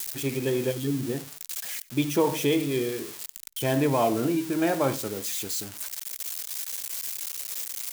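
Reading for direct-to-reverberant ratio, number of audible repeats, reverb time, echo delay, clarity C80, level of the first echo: none, 1, none, 93 ms, none, -23.0 dB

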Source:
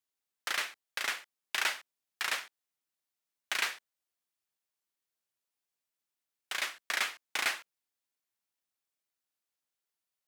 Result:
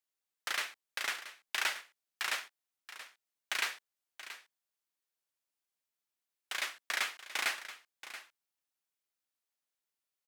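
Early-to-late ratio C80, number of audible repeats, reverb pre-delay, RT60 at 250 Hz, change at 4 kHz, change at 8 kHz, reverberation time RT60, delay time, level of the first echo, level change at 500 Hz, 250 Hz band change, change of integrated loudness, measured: none, 1, none, none, -2.0 dB, -2.0 dB, none, 0.679 s, -13.5 dB, -2.5 dB, -3.5 dB, -2.5 dB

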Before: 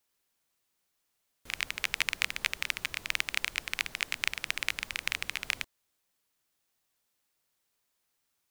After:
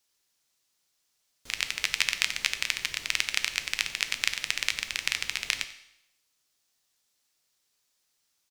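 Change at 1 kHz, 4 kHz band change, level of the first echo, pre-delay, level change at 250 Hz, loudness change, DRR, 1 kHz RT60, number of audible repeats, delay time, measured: +0.5 dB, +5.5 dB, -19.0 dB, 7 ms, -0.5 dB, +4.0 dB, 8.5 dB, 0.80 s, 1, 92 ms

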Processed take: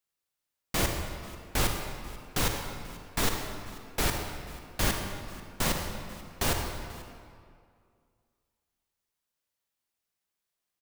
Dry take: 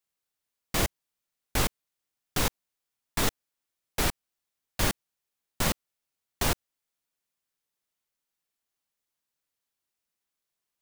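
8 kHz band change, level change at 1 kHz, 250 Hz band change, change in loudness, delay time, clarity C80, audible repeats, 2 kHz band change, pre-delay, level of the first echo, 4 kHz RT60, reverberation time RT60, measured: -0.5 dB, +0.5 dB, 0.0 dB, -2.0 dB, 0.489 s, 4.5 dB, 1, 0.0 dB, 38 ms, -20.0 dB, 1.5 s, 2.2 s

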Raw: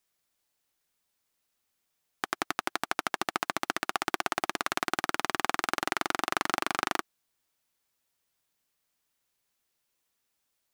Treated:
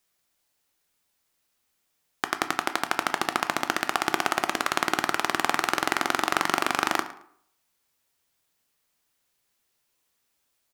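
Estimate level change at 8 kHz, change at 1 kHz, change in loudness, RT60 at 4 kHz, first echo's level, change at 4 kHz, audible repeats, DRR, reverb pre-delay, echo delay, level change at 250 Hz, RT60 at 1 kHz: +5.0 dB, +5.0 dB, +5.0 dB, 0.40 s, -18.0 dB, +5.0 dB, 2, 9.0 dB, 11 ms, 0.11 s, +5.0 dB, 0.60 s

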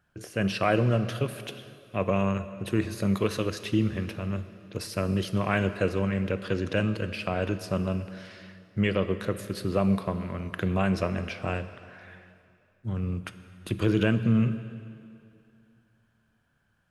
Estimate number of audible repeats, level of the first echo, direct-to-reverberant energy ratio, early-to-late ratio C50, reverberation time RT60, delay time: none, none, 11.0 dB, 12.0 dB, 2.6 s, none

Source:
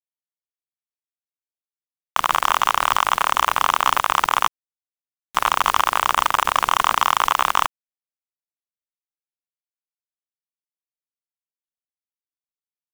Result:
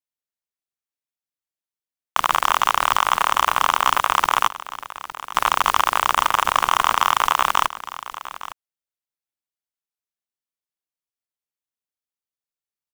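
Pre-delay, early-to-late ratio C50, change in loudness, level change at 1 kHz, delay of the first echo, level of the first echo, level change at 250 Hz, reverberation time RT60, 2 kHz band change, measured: none, none, 0.0 dB, 0.0 dB, 0.86 s, -15.0 dB, 0.0 dB, none, 0.0 dB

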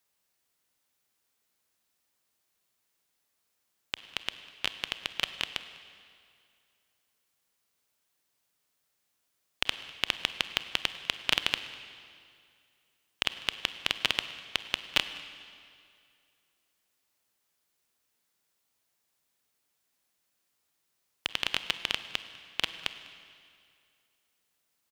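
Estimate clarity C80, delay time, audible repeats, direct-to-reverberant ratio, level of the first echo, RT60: 12.0 dB, 0.199 s, 1, 10.5 dB, -22.5 dB, 2.3 s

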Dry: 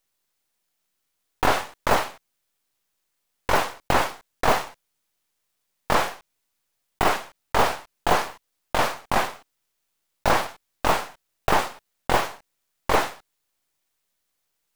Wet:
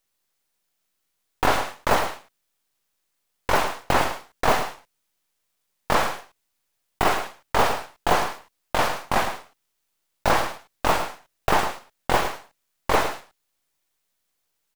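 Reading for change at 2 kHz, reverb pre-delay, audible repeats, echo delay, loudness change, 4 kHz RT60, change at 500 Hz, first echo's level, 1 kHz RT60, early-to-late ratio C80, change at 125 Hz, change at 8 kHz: +0.5 dB, none, 1, 0.108 s, +0.5 dB, none, +0.5 dB, -9.5 dB, none, none, +0.5 dB, +0.5 dB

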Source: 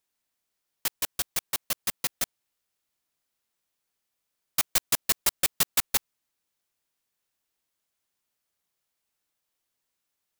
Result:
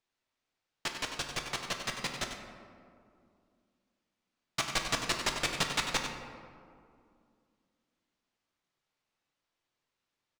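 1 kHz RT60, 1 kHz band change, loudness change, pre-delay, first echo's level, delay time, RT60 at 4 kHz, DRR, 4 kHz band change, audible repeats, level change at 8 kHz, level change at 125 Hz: 2.2 s, +2.0 dB, -7.0 dB, 6 ms, -9.0 dB, 95 ms, 1.0 s, 1.5 dB, -1.5 dB, 1, -9.5 dB, +3.0 dB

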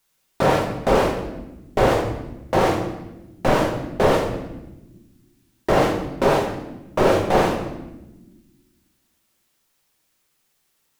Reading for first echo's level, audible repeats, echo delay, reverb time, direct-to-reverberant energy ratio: none, none, none, 1.1 s, 0.5 dB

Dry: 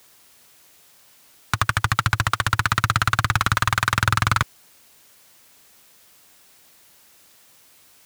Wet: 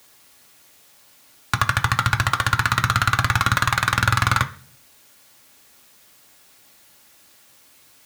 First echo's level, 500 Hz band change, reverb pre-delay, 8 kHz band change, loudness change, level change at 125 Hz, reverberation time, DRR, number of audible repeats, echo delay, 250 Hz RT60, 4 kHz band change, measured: none, +0.5 dB, 3 ms, +0.5 dB, +1.0 dB, +1.0 dB, 0.40 s, 5.5 dB, none, none, 0.55 s, +1.0 dB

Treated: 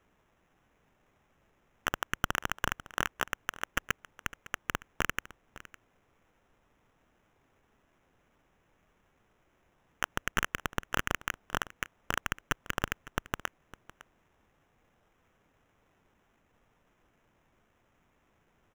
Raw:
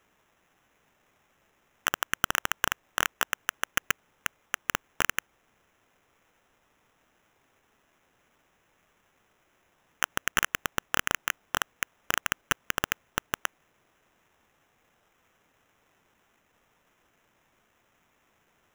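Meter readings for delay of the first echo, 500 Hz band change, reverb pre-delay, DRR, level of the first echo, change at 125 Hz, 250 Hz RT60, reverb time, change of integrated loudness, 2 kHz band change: 0.557 s, -1.0 dB, none, none, -18.5 dB, +3.5 dB, none, none, -5.0 dB, -4.5 dB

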